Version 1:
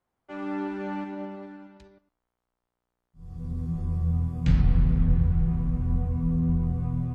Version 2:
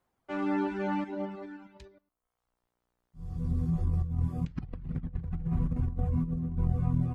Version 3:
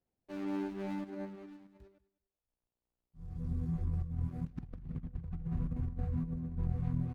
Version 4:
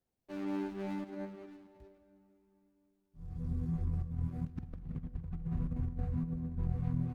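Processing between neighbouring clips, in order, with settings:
reverb removal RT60 0.77 s; compressor with a negative ratio -29 dBFS, ratio -0.5
median filter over 41 samples; feedback delay 198 ms, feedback 18%, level -21 dB; trim -6 dB
reverberation RT60 4.1 s, pre-delay 35 ms, DRR 16.5 dB

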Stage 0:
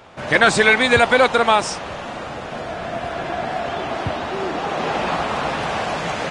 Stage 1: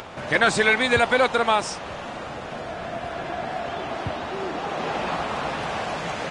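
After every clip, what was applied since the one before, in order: upward compressor, threshold -24 dBFS; trim -5 dB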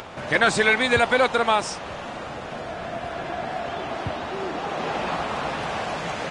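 no audible change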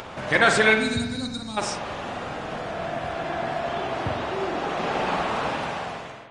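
fade out at the end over 0.86 s; time-frequency box 0.74–1.57 s, 320–3700 Hz -23 dB; spring tank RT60 1.2 s, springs 46 ms, chirp 25 ms, DRR 4 dB

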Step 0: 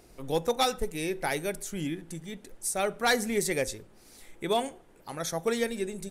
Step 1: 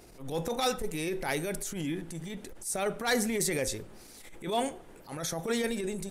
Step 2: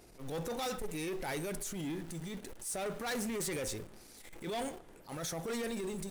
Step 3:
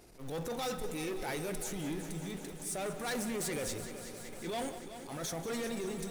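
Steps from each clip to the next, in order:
transient shaper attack -12 dB, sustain +4 dB; in parallel at -2.5 dB: compression, threshold -39 dBFS, peak gain reduction 15 dB; on the sum: trim -1.5 dB
in parallel at -7 dB: bit crusher 7-bit; on the sum: saturation -29 dBFS, distortion -9 dB; trim -4.5 dB
multi-head delay 189 ms, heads first and second, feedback 73%, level -14.5 dB

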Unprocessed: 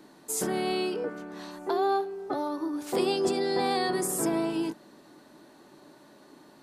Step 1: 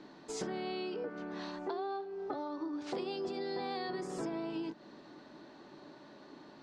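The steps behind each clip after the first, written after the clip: low-pass 5.3 kHz 24 dB/octave; compression 6:1, threshold -36 dBFS, peak gain reduction 13.5 dB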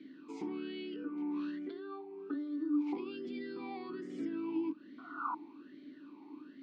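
painted sound noise, 4.98–5.35 s, 650–1500 Hz -34 dBFS; talking filter i-u 1.2 Hz; trim +9.5 dB

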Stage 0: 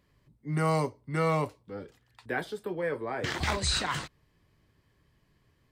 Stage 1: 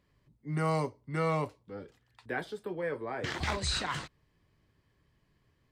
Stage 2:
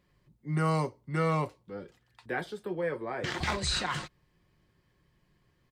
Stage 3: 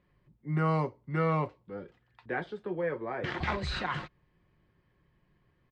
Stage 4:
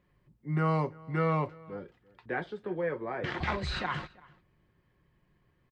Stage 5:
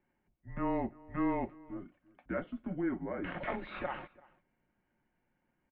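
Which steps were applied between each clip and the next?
treble shelf 11 kHz -8.5 dB; trim -3 dB
comb 5.6 ms, depth 31%; trim +1.5 dB
low-pass 2.7 kHz 12 dB/octave
echo from a far wall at 58 m, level -23 dB
mistuned SSB -180 Hz 190–3200 Hz; small resonant body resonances 280/580/2200 Hz, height 8 dB, ringing for 25 ms; trim -6.5 dB

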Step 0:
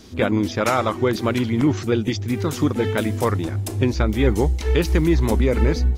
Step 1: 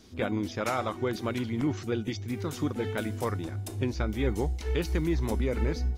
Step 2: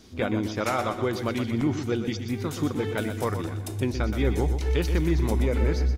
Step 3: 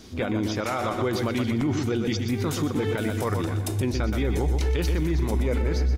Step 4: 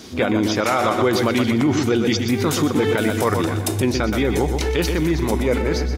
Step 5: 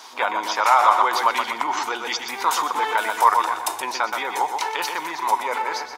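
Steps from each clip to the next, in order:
feedback comb 740 Hz, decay 0.37 s, mix 70%
feedback delay 123 ms, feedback 41%, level -9 dB; trim +3 dB
peak limiter -22.5 dBFS, peak gain reduction 10.5 dB; trim +5.5 dB
high-pass 190 Hz 6 dB/octave; trim +9 dB
resonant high-pass 940 Hz, resonance Q 6.4; trim -2 dB

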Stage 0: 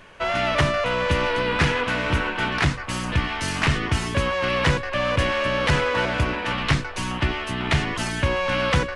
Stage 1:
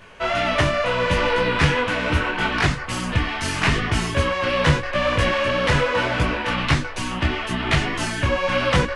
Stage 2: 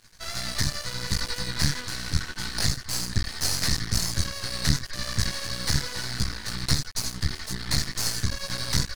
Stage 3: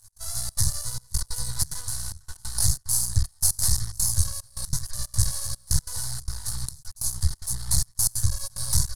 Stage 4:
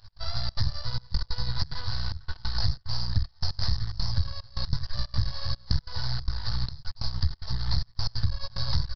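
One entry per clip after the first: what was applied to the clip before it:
detune thickener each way 27 cents; trim +5.5 dB
FFT filter 130 Hz 0 dB, 580 Hz -24 dB, 1.9 kHz -5 dB, 2.8 kHz -21 dB, 4.3 kHz +13 dB, 9.3 kHz +8 dB; half-wave rectifier
FFT filter 110 Hz 0 dB, 260 Hz -25 dB, 910 Hz -7 dB, 2.4 kHz -24 dB, 11 kHz +11 dB, 15 kHz -5 dB; trance gate "x.xxxx.xxxxx.." 184 bpm -24 dB; trim +4.5 dB
resampled via 11.025 kHz; compression 3:1, threshold -30 dBFS, peak gain reduction 12.5 dB; trim +7.5 dB

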